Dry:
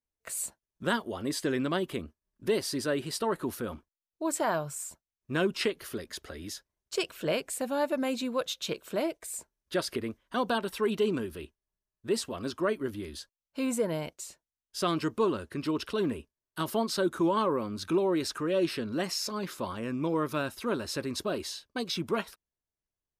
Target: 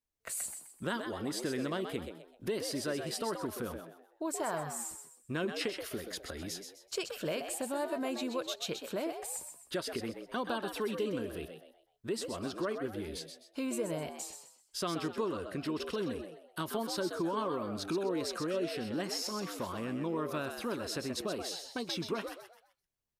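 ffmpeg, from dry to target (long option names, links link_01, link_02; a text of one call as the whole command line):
ffmpeg -i in.wav -filter_complex "[0:a]acompressor=threshold=-37dB:ratio=2,asplit=5[link_01][link_02][link_03][link_04][link_05];[link_02]adelay=128,afreqshift=88,volume=-7.5dB[link_06];[link_03]adelay=256,afreqshift=176,volume=-16.6dB[link_07];[link_04]adelay=384,afreqshift=264,volume=-25.7dB[link_08];[link_05]adelay=512,afreqshift=352,volume=-34.9dB[link_09];[link_01][link_06][link_07][link_08][link_09]amix=inputs=5:normalize=0" out.wav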